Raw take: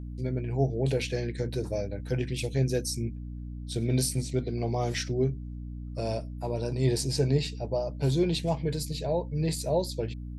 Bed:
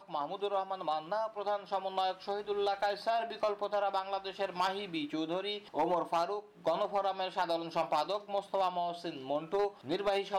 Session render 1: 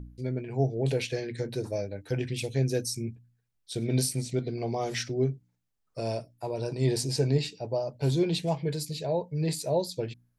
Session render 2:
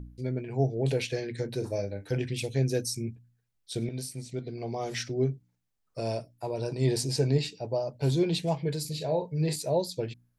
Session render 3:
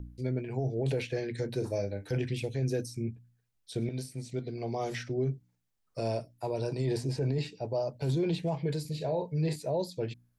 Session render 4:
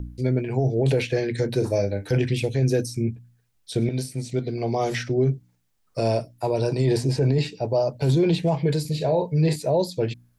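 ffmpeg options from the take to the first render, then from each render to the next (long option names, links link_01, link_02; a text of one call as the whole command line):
ffmpeg -i in.wav -af "bandreject=frequency=60:width_type=h:width=4,bandreject=frequency=120:width_type=h:width=4,bandreject=frequency=180:width_type=h:width=4,bandreject=frequency=240:width_type=h:width=4,bandreject=frequency=300:width_type=h:width=4" out.wav
ffmpeg -i in.wav -filter_complex "[0:a]asettb=1/sr,asplit=3[link_01][link_02][link_03];[link_01]atrim=end=1.564[link_04];[link_02]atrim=start=1.56:end=2.18,asetpts=PTS-STARTPTS,afade=type=in:duration=0.004:curve=qsin,afade=type=out:start_time=0.616:duration=0.004:curve=qsin,asplit=2[link_05][link_06];[link_06]adelay=40,volume=-10.5dB[link_07];[link_05][link_07]amix=inputs=2:normalize=0,atrim=end_sample=27342[link_08];[link_03]atrim=start=2.176[link_09];[link_04][link_08]acrossfade=duration=0.004:curve1=hsin:curve2=qsin[link_10];[link_10][link_09]acrossfade=duration=0.004:curve1=qsin:curve2=hsin,asettb=1/sr,asplit=3[link_11][link_12][link_13];[link_11]atrim=end=8.814[link_14];[link_12]atrim=start=8.81:end=9.56,asetpts=PTS-STARTPTS,afade=type=in:duration=0.004:curve=qsin,afade=type=out:start_time=0.746:duration=0.004:curve=qsin,asplit=2[link_15][link_16];[link_16]adelay=39,volume=-8dB[link_17];[link_15][link_17]amix=inputs=2:normalize=0,atrim=end_sample=33075[link_18];[link_13]atrim=start=9.556[link_19];[link_14][link_18]acrossfade=duration=0.004:curve1=hsin:curve2=qsin[link_20];[link_20][link_19]acrossfade=duration=0.004:curve1=qsin:curve2=hsin,asplit=2[link_21][link_22];[link_21]atrim=end=3.89,asetpts=PTS-STARTPTS,afade=type=out:start_time=3.886:duration=0.004:curve=hsin:silence=0.251189[link_23];[link_22]atrim=start=3.89,asetpts=PTS-STARTPTS,afade=type=in:duration=1.42:silence=0.251189[link_24];[link_23][link_24]concat=n=2:v=0:a=1" out.wav
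ffmpeg -i in.wav -filter_complex "[0:a]acrossover=split=440|2400[link_01][link_02][link_03];[link_03]acompressor=threshold=-46dB:ratio=6[link_04];[link_01][link_02][link_04]amix=inputs=3:normalize=0,alimiter=limit=-22.5dB:level=0:latency=1:release=22" out.wav
ffmpeg -i in.wav -af "volume=9.5dB" out.wav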